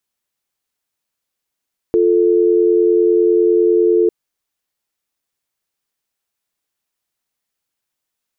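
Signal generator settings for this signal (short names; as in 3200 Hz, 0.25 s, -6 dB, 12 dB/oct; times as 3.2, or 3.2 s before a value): call progress tone dial tone, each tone -12.5 dBFS 2.15 s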